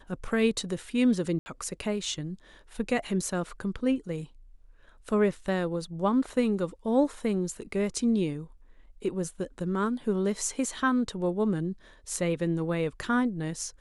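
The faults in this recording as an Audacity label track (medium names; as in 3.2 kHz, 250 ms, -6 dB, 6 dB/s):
1.390000	1.460000	dropout 70 ms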